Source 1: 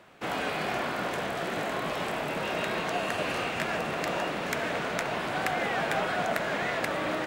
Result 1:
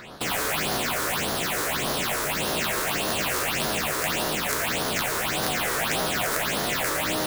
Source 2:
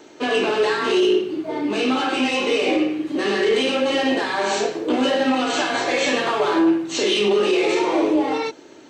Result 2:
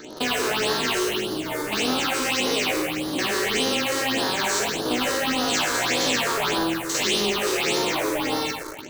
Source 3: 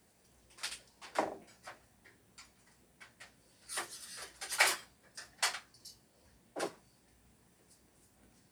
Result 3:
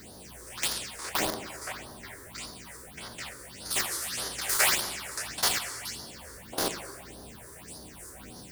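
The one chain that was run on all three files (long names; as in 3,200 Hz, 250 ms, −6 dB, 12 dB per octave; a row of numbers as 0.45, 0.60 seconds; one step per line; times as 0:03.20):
spectrum averaged block by block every 50 ms
coupled-rooms reverb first 0.66 s, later 2.5 s, from −18 dB, DRR 6 dB
in parallel at −6 dB: bit reduction 6 bits
on the sum: all-pass phaser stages 6, 1.7 Hz, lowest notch 190–2,400 Hz
every bin compressed towards the loudest bin 2 to 1
normalise the peak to −9 dBFS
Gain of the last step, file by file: +6.5, −4.0, +4.5 decibels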